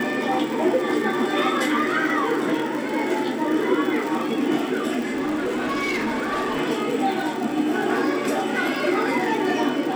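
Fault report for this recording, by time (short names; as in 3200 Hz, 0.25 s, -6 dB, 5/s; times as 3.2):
crackle 100/s -27 dBFS
4.99–6.6 clipped -21 dBFS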